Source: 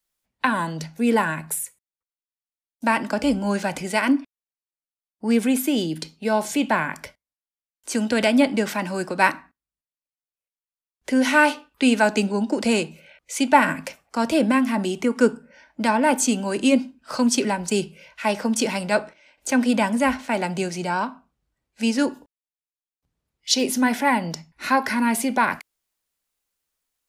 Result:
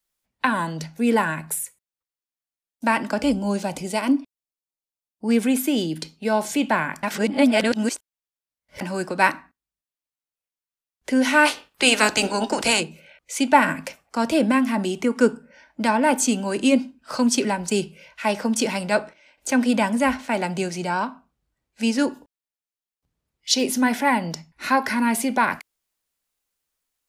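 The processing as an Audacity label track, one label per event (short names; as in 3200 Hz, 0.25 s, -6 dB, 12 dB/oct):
3.320000	5.290000	bell 1700 Hz -10.5 dB 1 oct
7.030000	8.810000	reverse
11.450000	12.790000	spectral limiter ceiling under each frame's peak by 20 dB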